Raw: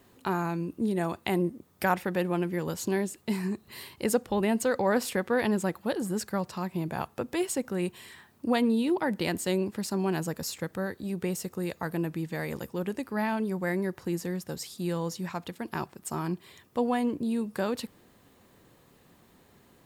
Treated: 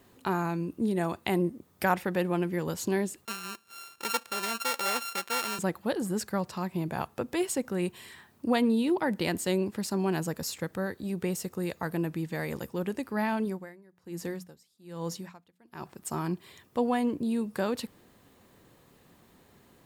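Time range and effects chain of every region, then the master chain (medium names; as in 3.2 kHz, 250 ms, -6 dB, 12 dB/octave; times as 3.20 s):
3.25–5.59 s: sorted samples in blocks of 32 samples + high-pass 1.3 kHz 6 dB/octave
13.45–15.86 s: hum notches 60/120/180/240 Hz + logarithmic tremolo 1.2 Hz, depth 27 dB
whole clip: none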